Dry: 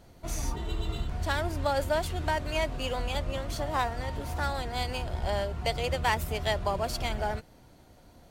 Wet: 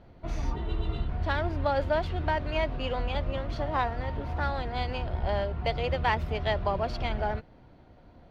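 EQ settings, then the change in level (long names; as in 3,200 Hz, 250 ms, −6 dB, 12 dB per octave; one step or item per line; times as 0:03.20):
dynamic equaliser 5,500 Hz, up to +4 dB, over −46 dBFS, Q 0.79
high-frequency loss of the air 320 metres
+2.0 dB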